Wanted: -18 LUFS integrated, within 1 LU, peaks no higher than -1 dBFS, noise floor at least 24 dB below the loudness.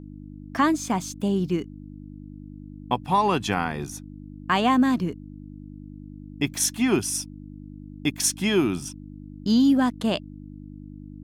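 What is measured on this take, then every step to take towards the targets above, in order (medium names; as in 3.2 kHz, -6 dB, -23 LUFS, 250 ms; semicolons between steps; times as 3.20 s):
hum 50 Hz; highest harmonic 300 Hz; hum level -37 dBFS; loudness -24.0 LUFS; peak level -7.5 dBFS; loudness target -18.0 LUFS
-> de-hum 50 Hz, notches 6; trim +6 dB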